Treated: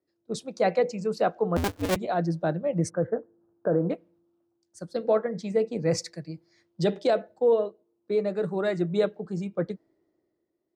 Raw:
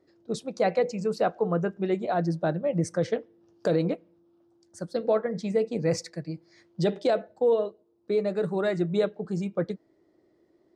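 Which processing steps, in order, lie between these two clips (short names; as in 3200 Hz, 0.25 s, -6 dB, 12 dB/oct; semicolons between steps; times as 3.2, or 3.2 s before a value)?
1.56–1.96 cycle switcher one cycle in 2, inverted; 2.9–3.9 elliptic low-pass 1600 Hz, stop band 40 dB; three-band expander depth 40%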